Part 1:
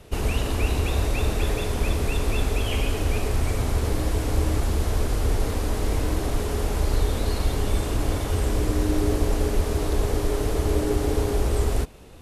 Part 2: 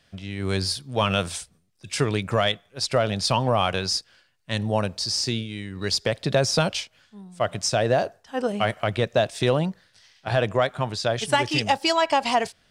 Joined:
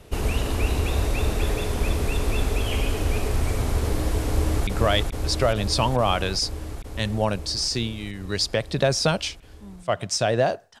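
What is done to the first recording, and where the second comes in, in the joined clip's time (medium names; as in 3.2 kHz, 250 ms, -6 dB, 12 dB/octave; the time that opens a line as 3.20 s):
part 1
4.26–4.67 s: echo throw 430 ms, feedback 80%, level -3 dB
4.67 s: go over to part 2 from 2.19 s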